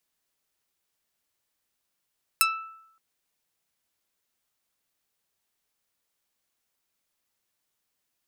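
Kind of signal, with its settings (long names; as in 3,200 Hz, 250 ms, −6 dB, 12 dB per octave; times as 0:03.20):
Karplus-Strong string E6, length 0.57 s, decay 0.78 s, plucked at 0.37, medium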